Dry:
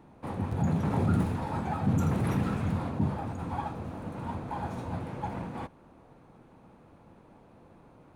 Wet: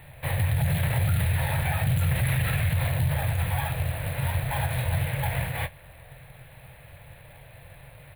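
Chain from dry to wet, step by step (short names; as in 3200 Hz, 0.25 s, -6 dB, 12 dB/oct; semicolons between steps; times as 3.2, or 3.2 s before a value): high shelf 8500 Hz -9.5 dB; doubler 23 ms -13 dB; in parallel at -3 dB: short-mantissa float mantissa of 2-bit; on the sum: EQ curve 140 Hz 0 dB, 210 Hz -26 dB, 380 Hz -21 dB, 580 Hz -4 dB, 870 Hz -11 dB, 1300 Hz -11 dB, 1800 Hz +7 dB, 4000 Hz +4 dB, 5700 Hz -21 dB, 10000 Hz +13 dB; limiter -25 dBFS, peak gain reduction 12 dB; gain +8.5 dB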